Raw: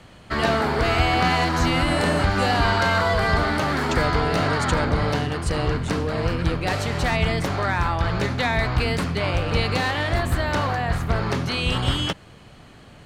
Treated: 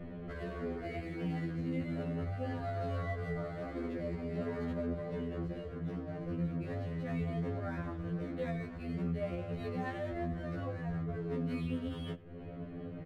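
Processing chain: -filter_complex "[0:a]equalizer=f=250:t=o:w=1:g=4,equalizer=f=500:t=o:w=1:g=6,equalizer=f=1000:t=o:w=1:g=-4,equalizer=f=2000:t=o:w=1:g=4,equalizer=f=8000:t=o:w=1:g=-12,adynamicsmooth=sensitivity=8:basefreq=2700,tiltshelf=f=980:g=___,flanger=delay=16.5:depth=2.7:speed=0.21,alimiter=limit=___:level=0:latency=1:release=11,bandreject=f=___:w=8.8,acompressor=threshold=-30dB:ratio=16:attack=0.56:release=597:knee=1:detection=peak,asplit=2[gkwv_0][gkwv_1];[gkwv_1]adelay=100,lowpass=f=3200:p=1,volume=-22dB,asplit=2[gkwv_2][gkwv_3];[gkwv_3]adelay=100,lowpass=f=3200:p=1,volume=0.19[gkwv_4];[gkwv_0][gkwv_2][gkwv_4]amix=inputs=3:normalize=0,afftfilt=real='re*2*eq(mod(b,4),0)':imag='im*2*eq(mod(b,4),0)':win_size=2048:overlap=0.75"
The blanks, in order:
7.5, -14dB, 870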